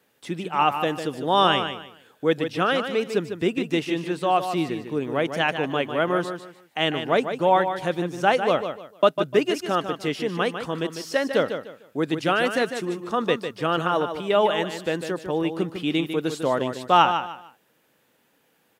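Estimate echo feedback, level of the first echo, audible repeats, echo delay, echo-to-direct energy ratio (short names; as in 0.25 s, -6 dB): 27%, -8.5 dB, 3, 0.15 s, -8.0 dB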